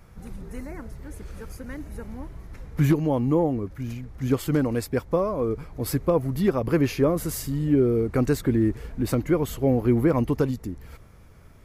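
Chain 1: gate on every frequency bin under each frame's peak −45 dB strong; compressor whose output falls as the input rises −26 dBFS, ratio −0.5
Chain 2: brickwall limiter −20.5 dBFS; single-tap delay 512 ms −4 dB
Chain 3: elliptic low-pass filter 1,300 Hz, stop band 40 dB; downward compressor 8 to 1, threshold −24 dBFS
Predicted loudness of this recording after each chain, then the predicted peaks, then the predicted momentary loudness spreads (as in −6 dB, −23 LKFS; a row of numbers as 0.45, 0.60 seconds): −30.0, −29.5, −31.0 LKFS; −12.5, −16.5, −15.5 dBFS; 10, 11, 13 LU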